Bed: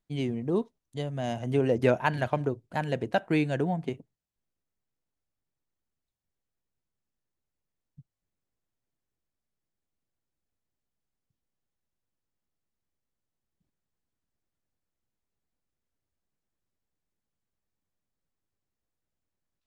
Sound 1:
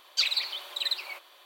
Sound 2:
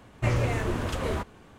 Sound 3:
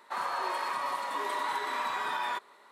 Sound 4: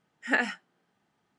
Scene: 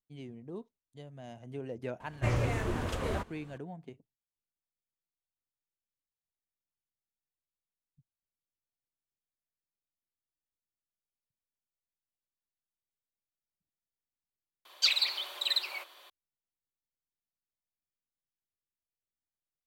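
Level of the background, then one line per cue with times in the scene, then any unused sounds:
bed -15.5 dB
2 add 2 -4.5 dB
14.65 replace with 1 -0.5 dB
not used: 3, 4

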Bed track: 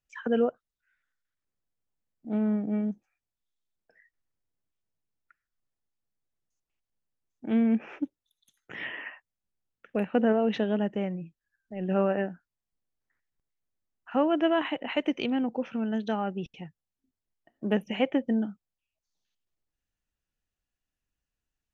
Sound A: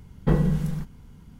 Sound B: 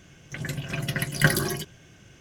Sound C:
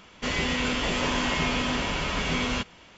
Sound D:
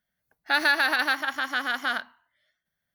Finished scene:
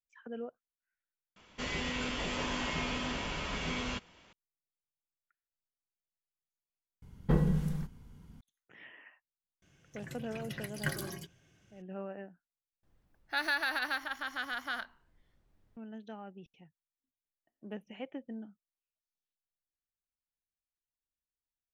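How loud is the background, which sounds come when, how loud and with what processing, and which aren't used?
bed track -16.5 dB
1.36 replace with C -9 dB
7.02 replace with A -6.5 dB
9.62 add B -14.5 dB
12.83 replace with D -10 dB + added noise brown -58 dBFS

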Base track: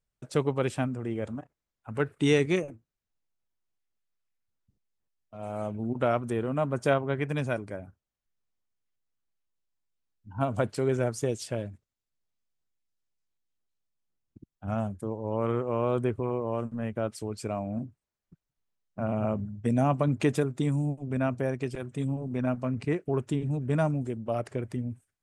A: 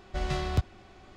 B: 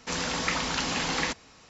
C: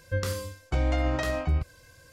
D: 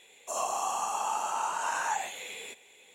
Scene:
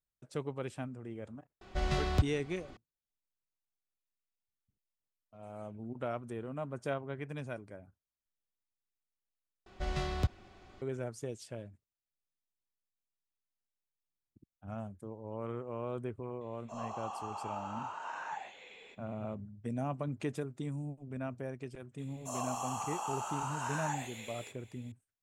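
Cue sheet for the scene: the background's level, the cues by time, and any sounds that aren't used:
base track -11.5 dB
1.61 add A -1.5 dB
9.66 replace with A -4.5 dB
16.41 add D -9 dB + air absorption 190 m
21.98 add D -7 dB
not used: B, C

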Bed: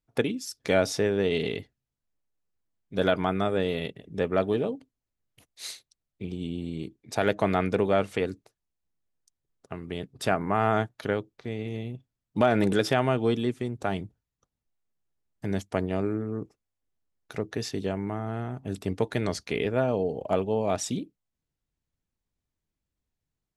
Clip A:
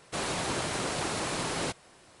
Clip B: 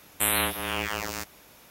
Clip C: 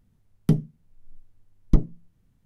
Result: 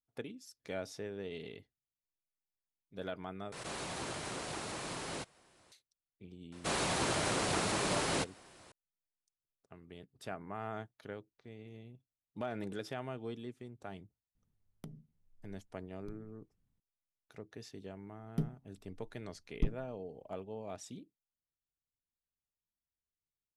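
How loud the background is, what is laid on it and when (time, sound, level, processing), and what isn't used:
bed -17.5 dB
3.52 replace with A -9.5 dB + backwards sustainer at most 44 dB/s
6.52 add A -1.5 dB
14.35 add C -15 dB + compressor 8:1, threshold -28 dBFS
17.89 add C -14.5 dB + vocal rider
not used: B

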